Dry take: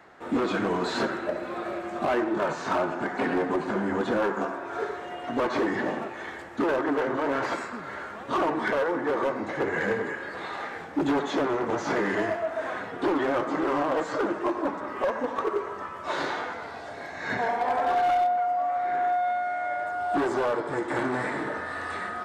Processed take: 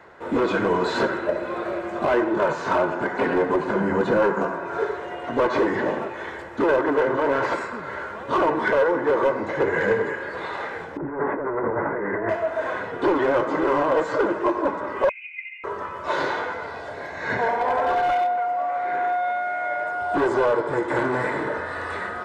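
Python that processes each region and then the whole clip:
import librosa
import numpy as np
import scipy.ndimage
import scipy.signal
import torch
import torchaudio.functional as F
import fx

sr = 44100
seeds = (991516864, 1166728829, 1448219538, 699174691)

y = fx.chain(x, sr, fx.peak_eq(hz=170.0, db=13.5, octaves=0.24),
    fx.notch(hz=3400.0, q=12.0), at=(3.8, 4.78))
y = fx.chain(y, sr, fx.steep_lowpass(hz=2000.0, slope=48),
    fx.over_compress(threshold_db=-31.0, ratio=-1.0), at=(10.97, 12.29))
y = fx.chain(y, sr, fx.formant_cascade(vowel='a'),
    fx.freq_invert(carrier_hz=3200), at=(15.09, 15.64))
y = fx.chain(y, sr, fx.highpass(hz=140.0, slope=12),
    fx.peak_eq(hz=2400.0, db=3.5, octaves=0.41), at=(18.12, 20.02))
y = fx.high_shelf(y, sr, hz=3500.0, db=-7.5)
y = y + 0.37 * np.pad(y, (int(2.0 * sr / 1000.0), 0))[:len(y)]
y = y * 10.0 ** (5.0 / 20.0)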